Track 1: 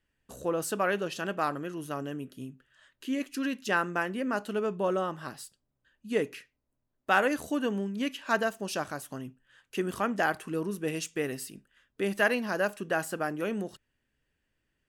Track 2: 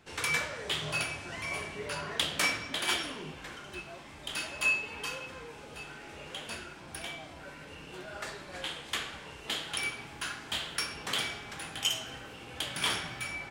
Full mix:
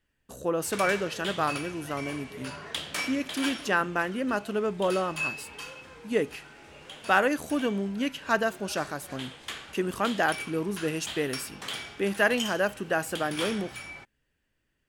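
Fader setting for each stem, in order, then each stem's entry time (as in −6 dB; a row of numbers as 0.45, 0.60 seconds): +2.0, −3.5 decibels; 0.00, 0.55 seconds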